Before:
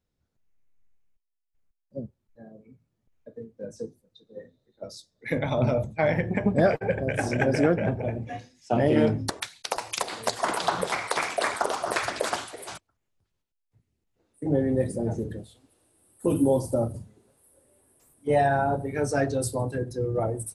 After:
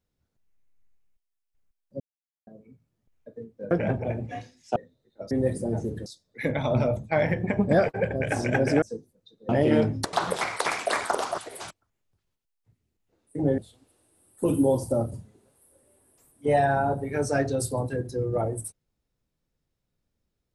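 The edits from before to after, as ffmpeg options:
-filter_complex "[0:a]asplit=12[s0][s1][s2][s3][s4][s5][s6][s7][s8][s9][s10][s11];[s0]atrim=end=2,asetpts=PTS-STARTPTS,afade=t=out:st=1.996:d=0.004:c=hsin[s12];[s1]atrim=start=2:end=2.47,asetpts=PTS-STARTPTS,volume=0[s13];[s2]atrim=start=2.47:end=3.712,asetpts=PTS-STARTPTS,afade=t=in:d=0.004:c=hsin[s14];[s3]atrim=start=7.688:end=8.742[s15];[s4]atrim=start=4.378:end=4.932[s16];[s5]atrim=start=14.648:end=15.402[s17];[s6]atrim=start=4.928:end=7.692[s18];[s7]atrim=start=3.708:end=4.382[s19];[s8]atrim=start=8.738:end=9.382[s20];[s9]atrim=start=10.638:end=11.892[s21];[s10]atrim=start=12.448:end=14.652[s22];[s11]atrim=start=15.398[s23];[s12][s13][s14]concat=n=3:v=0:a=1[s24];[s24][s15]acrossfade=d=0.004:c1=hsin:c2=hsin[s25];[s25][s16]acrossfade=d=0.004:c1=hsin:c2=hsin[s26];[s26][s17]acrossfade=d=0.004:c1=hsin:c2=hsin[s27];[s27][s18]acrossfade=d=0.004:c1=hsin:c2=hsin[s28];[s28][s19]acrossfade=d=0.004:c1=hsin:c2=hsin[s29];[s29][s20]acrossfade=d=0.004:c1=hsin:c2=hsin[s30];[s30][s21]acrossfade=d=0.004:c1=hsin:c2=hsin[s31];[s31][s22]acrossfade=d=0.004:c1=hsin:c2=hsin[s32];[s32][s23]acrossfade=d=0.004:c1=hsin:c2=hsin"

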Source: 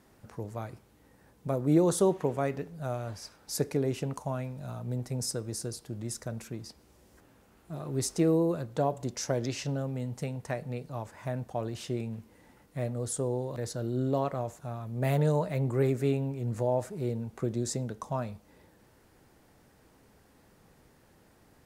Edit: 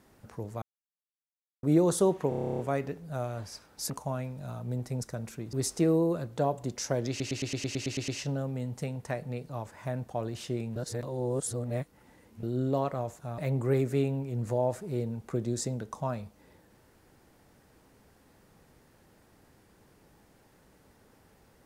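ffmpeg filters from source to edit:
-filter_complex "[0:a]asplit=28[s0][s1][s2][s3][s4][s5][s6][s7][s8][s9][s10][s11][s12][s13][s14][s15][s16][s17][s18][s19][s20][s21][s22][s23][s24][s25][s26][s27];[s0]atrim=end=0.62,asetpts=PTS-STARTPTS,afade=t=out:st=0.616:d=0.004:c=hsin[s28];[s1]atrim=start=0.62:end=1.63,asetpts=PTS-STARTPTS,volume=0[s29];[s2]atrim=start=1.63:end=2.322,asetpts=PTS-STARTPTS,afade=t=in:d=0.004:c=hsin[s30];[s3]atrim=start=2.288:end=2.322[s31];[s4]atrim=start=2.288:end=2.322[s32];[s5]atrim=start=2.288:end=2.322[s33];[s6]atrim=start=2.288:end=2.322[s34];[s7]atrim=start=2.288:end=2.322[s35];[s8]atrim=start=2.288:end=2.322[s36];[s9]atrim=start=2.288:end=2.322[s37];[s10]atrim=start=2.288:end=2.322[s38];[s11]atrim=start=2.288:end=2.322[s39];[s12]atrim=start=2.288:end=3.602[s40];[s13]atrim=start=4.098:end=5.232[s41];[s14]atrim=start=6.158:end=6.662[s42];[s15]atrim=start=7.918:end=9.592[s43];[s16]atrim=start=9.478:end=9.592[s44];[s17]atrim=start=9.478:end=9.592[s45];[s18]atrim=start=9.478:end=9.592[s46];[s19]atrim=start=9.478:end=9.592[s47];[s20]atrim=start=9.478:end=9.592[s48];[s21]atrim=start=9.478:end=9.592[s49];[s22]atrim=start=9.478:end=9.592[s50];[s23]atrim=start=9.478:end=9.592[s51];[s24]atrim=start=9.478:end=12.162[s52];[s25]atrim=start=12.158:end=13.832,asetpts=PTS-STARTPTS,areverse[s53];[s26]atrim=start=13.828:end=14.782[s54];[s27]atrim=start=15.468[s55];[s28][s29][s30]concat=n=3:v=0:a=1[s56];[s56][s31]acrossfade=d=0.004:c1=hsin:c2=hsin[s57];[s57][s32]acrossfade=d=0.004:c1=hsin:c2=hsin[s58];[s58][s33]acrossfade=d=0.004:c1=hsin:c2=hsin[s59];[s59][s34]acrossfade=d=0.004:c1=hsin:c2=hsin[s60];[s60][s35]acrossfade=d=0.004:c1=hsin:c2=hsin[s61];[s61][s36]acrossfade=d=0.004:c1=hsin:c2=hsin[s62];[s62][s37]acrossfade=d=0.004:c1=hsin:c2=hsin[s63];[s63][s38]acrossfade=d=0.004:c1=hsin:c2=hsin[s64];[s64][s39]acrossfade=d=0.004:c1=hsin:c2=hsin[s65];[s65][s40]acrossfade=d=0.004:c1=hsin:c2=hsin[s66];[s66][s41]acrossfade=d=0.004:c1=hsin:c2=hsin[s67];[s67][s42]acrossfade=d=0.004:c1=hsin:c2=hsin[s68];[s68][s43]acrossfade=d=0.004:c1=hsin:c2=hsin[s69];[s69][s44]acrossfade=d=0.004:c1=hsin:c2=hsin[s70];[s70][s45]acrossfade=d=0.004:c1=hsin:c2=hsin[s71];[s71][s46]acrossfade=d=0.004:c1=hsin:c2=hsin[s72];[s72][s47]acrossfade=d=0.004:c1=hsin:c2=hsin[s73];[s73][s48]acrossfade=d=0.004:c1=hsin:c2=hsin[s74];[s74][s49]acrossfade=d=0.004:c1=hsin:c2=hsin[s75];[s75][s50]acrossfade=d=0.004:c1=hsin:c2=hsin[s76];[s76][s51]acrossfade=d=0.004:c1=hsin:c2=hsin[s77];[s77][s52]acrossfade=d=0.004:c1=hsin:c2=hsin[s78];[s78][s53]acrossfade=d=0.004:c1=hsin:c2=hsin[s79];[s79][s54]acrossfade=d=0.004:c1=hsin:c2=hsin[s80];[s80][s55]acrossfade=d=0.004:c1=hsin:c2=hsin"

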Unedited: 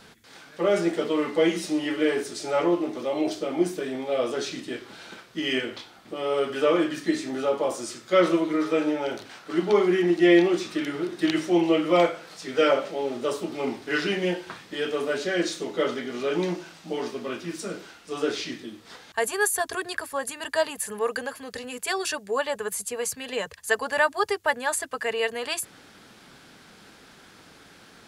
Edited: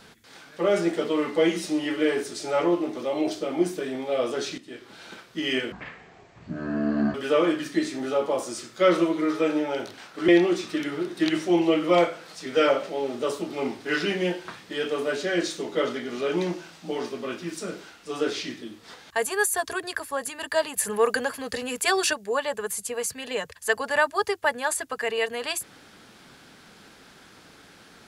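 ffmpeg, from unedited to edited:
-filter_complex "[0:a]asplit=7[s0][s1][s2][s3][s4][s5][s6];[s0]atrim=end=4.58,asetpts=PTS-STARTPTS,afade=t=out:st=4.576:d=0.004:c=hsin:silence=0.211349[s7];[s1]atrim=start=4.58:end=5.724,asetpts=PTS-STARTPTS,afade=t=in:d=0.53:silence=0.211349[s8];[s2]atrim=start=5.72:end=6.46,asetpts=PTS-STARTPTS,asetrate=22932,aresample=44100[s9];[s3]atrim=start=6.456:end=9.602[s10];[s4]atrim=start=10.298:end=20.782[s11];[s5]atrim=start=20.778:end=22.152,asetpts=PTS-STARTPTS,volume=1.78[s12];[s6]atrim=start=22.148[s13];[s7][s8]concat=n=2:v=0:a=1[s14];[s14][s9]acrossfade=d=0.004:c1=hsin:c2=hsin[s15];[s15][s10]acrossfade=d=0.004:c1=hsin:c2=hsin[s16];[s16][s11]acrossfade=d=0.004:c1=hsin:c2=hsin[s17];[s17][s12]acrossfade=d=0.004:c1=hsin:c2=hsin[s18];[s18][s13]acrossfade=d=0.004:c1=hsin:c2=hsin"

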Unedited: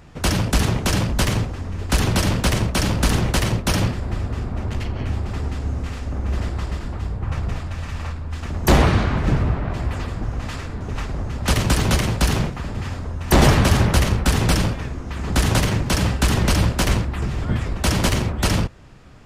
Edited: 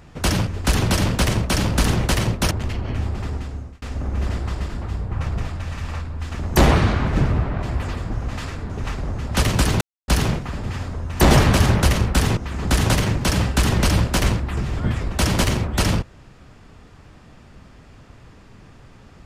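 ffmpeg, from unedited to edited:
-filter_complex "[0:a]asplit=7[s0][s1][s2][s3][s4][s5][s6];[s0]atrim=end=0.472[s7];[s1]atrim=start=1.718:end=3.762[s8];[s2]atrim=start=4.618:end=5.93,asetpts=PTS-STARTPTS,afade=t=out:st=0.532:d=0.78:c=qsin[s9];[s3]atrim=start=5.93:end=11.92,asetpts=PTS-STARTPTS,afade=t=in:d=0.004:c=hsin,afade=t=out:st=5.986:d=0.004:c=hsin[s10];[s4]atrim=start=11.92:end=12.19,asetpts=PTS-STARTPTS,volume=0[s11];[s5]atrim=start=12.19:end=14.482,asetpts=PTS-STARTPTS,afade=t=in:d=0.004:c=hsin[s12];[s6]atrim=start=15.018[s13];[s7][s8]acrossfade=d=0.004:c1=hsin:c2=hsin[s14];[s9][s10][s11][s12]concat=n=4:v=0:a=1[s15];[s14][s15]acrossfade=d=0.004:c1=hsin:c2=hsin[s16];[s16][s13]acrossfade=d=0.004:c1=hsin:c2=hsin"

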